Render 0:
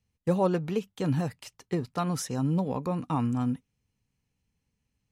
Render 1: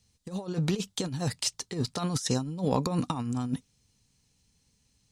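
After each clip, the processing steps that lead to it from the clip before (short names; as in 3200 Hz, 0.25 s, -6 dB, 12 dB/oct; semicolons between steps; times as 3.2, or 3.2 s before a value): band shelf 5800 Hz +11 dB; negative-ratio compressor -31 dBFS, ratio -0.5; gain +2.5 dB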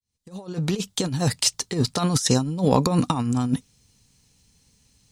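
opening faded in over 1.19 s; high shelf 11000 Hz +4.5 dB; gain +8 dB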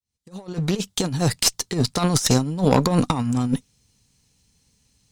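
added harmonics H 4 -15 dB, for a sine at -3.5 dBFS; in parallel at -3.5 dB: crossover distortion -39.5 dBFS; on the sum: gain -2.5 dB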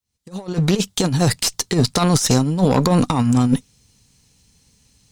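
limiter -12 dBFS, peak gain reduction 10 dB; gain +6.5 dB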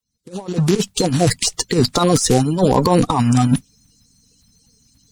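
bin magnitudes rounded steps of 30 dB; gain +2 dB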